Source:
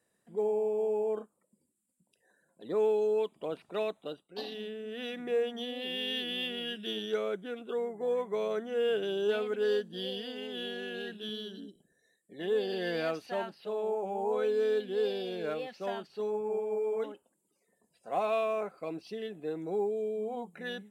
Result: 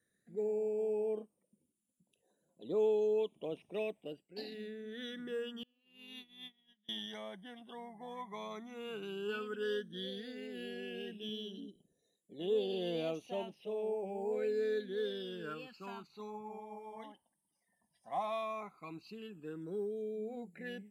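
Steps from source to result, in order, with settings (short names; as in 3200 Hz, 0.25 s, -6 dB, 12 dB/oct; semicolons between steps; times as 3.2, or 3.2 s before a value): 5.63–6.89 gate -32 dBFS, range -32 dB; phaser stages 12, 0.1 Hz, lowest notch 430–1700 Hz; gain -2.5 dB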